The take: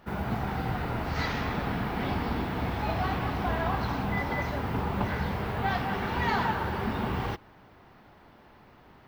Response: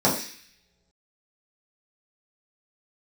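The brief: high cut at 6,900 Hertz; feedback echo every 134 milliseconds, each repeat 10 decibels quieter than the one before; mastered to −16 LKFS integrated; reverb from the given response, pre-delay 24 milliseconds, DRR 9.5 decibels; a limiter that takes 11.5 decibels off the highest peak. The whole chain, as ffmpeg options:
-filter_complex "[0:a]lowpass=6900,alimiter=level_in=2.5dB:limit=-24dB:level=0:latency=1,volume=-2.5dB,aecho=1:1:134|268|402|536:0.316|0.101|0.0324|0.0104,asplit=2[link_01][link_02];[1:a]atrim=start_sample=2205,adelay=24[link_03];[link_02][link_03]afir=irnorm=-1:irlink=0,volume=-26.5dB[link_04];[link_01][link_04]amix=inputs=2:normalize=0,volume=17.5dB"

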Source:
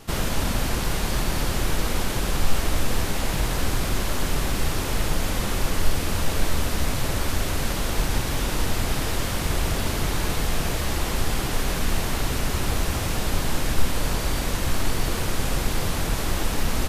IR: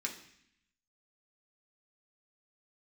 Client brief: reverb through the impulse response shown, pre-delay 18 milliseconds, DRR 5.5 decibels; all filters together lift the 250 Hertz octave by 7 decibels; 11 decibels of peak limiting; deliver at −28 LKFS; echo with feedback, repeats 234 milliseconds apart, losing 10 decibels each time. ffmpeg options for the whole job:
-filter_complex "[0:a]equalizer=frequency=250:width_type=o:gain=9,alimiter=limit=-17dB:level=0:latency=1,aecho=1:1:234|468|702|936:0.316|0.101|0.0324|0.0104,asplit=2[link_01][link_02];[1:a]atrim=start_sample=2205,adelay=18[link_03];[link_02][link_03]afir=irnorm=-1:irlink=0,volume=-7dB[link_04];[link_01][link_04]amix=inputs=2:normalize=0,volume=-1.5dB"

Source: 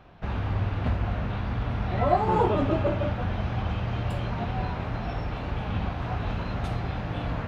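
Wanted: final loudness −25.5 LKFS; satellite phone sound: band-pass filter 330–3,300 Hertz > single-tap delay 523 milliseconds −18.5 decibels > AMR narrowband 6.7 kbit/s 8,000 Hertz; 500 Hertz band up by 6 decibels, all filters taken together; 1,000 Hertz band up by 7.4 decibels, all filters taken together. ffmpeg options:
ffmpeg -i in.wav -af "highpass=330,lowpass=3300,equalizer=frequency=500:width_type=o:gain=6,equalizer=frequency=1000:width_type=o:gain=7.5,aecho=1:1:523:0.119,volume=1.5dB" -ar 8000 -c:a libopencore_amrnb -b:a 6700 out.amr

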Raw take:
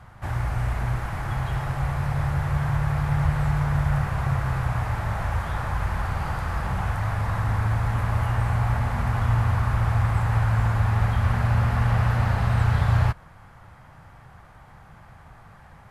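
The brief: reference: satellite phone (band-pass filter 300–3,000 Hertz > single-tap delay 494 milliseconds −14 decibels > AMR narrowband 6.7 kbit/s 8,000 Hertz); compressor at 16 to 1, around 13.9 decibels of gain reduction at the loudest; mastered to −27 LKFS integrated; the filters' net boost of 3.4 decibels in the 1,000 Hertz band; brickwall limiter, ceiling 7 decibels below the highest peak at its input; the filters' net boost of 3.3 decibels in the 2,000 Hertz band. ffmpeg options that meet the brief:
ffmpeg -i in.wav -af "equalizer=frequency=1000:width_type=o:gain=3.5,equalizer=frequency=2000:width_type=o:gain=3.5,acompressor=threshold=-30dB:ratio=16,alimiter=level_in=5dB:limit=-24dB:level=0:latency=1,volume=-5dB,highpass=300,lowpass=3000,aecho=1:1:494:0.2,volume=19dB" -ar 8000 -c:a libopencore_amrnb -b:a 6700 out.amr

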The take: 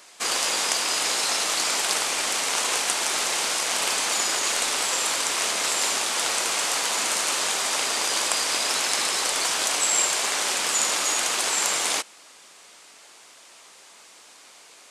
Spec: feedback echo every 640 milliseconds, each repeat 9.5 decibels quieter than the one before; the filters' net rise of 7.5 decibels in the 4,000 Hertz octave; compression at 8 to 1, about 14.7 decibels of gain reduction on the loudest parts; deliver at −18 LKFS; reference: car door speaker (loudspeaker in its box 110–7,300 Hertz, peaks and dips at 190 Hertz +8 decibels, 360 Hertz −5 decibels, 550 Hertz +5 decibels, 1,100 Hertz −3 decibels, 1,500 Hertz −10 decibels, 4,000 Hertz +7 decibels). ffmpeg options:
ffmpeg -i in.wav -af "equalizer=frequency=4000:width_type=o:gain=5,acompressor=threshold=-33dB:ratio=8,highpass=110,equalizer=frequency=190:width_type=q:width=4:gain=8,equalizer=frequency=360:width_type=q:width=4:gain=-5,equalizer=frequency=550:width_type=q:width=4:gain=5,equalizer=frequency=1100:width_type=q:width=4:gain=-3,equalizer=frequency=1500:width_type=q:width=4:gain=-10,equalizer=frequency=4000:width_type=q:width=4:gain=7,lowpass=frequency=7300:width=0.5412,lowpass=frequency=7300:width=1.3066,aecho=1:1:640|1280|1920|2560:0.335|0.111|0.0365|0.012,volume=13.5dB" out.wav

